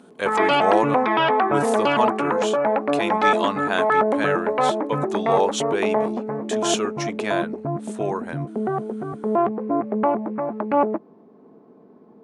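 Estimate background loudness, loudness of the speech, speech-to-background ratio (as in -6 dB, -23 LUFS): -22.5 LUFS, -27.0 LUFS, -4.5 dB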